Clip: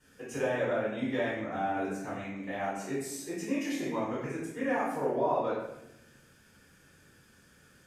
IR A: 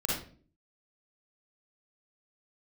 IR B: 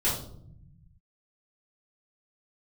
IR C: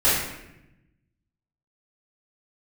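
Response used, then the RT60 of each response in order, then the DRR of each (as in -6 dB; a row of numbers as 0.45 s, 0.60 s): C; 0.45 s, 0.65 s, 0.90 s; -5.5 dB, -10.0 dB, -12.5 dB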